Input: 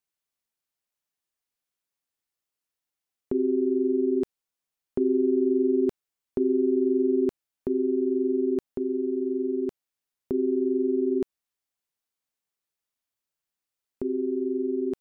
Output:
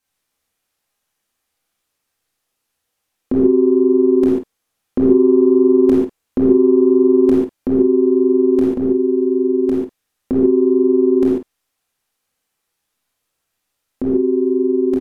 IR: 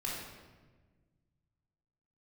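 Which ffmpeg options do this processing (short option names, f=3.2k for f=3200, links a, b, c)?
-filter_complex "[0:a]acontrast=81,asplit=2[a][b];[b]adelay=50,volume=-10.5dB[c];[a][c]amix=inputs=2:normalize=0[d];[1:a]atrim=start_sample=2205,atrim=end_sample=4410,asetrate=29106,aresample=44100[e];[d][e]afir=irnorm=-1:irlink=0,volume=3.5dB"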